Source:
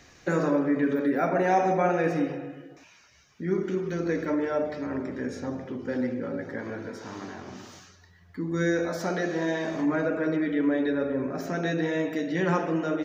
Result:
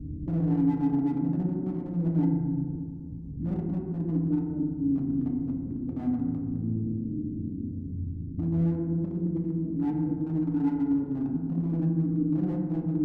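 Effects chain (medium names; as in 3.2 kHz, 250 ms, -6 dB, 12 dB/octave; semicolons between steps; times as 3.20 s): one-bit delta coder 64 kbps, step -30.5 dBFS; inverse Chebyshev low-pass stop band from 860 Hz, stop band 60 dB; in parallel at -2 dB: compression 8:1, threshold -40 dBFS, peak gain reduction 15 dB; on the sum: hard clipper -27.5 dBFS, distortion -16 dB; reverberation RT60 1.9 s, pre-delay 3 ms, DRR 0 dB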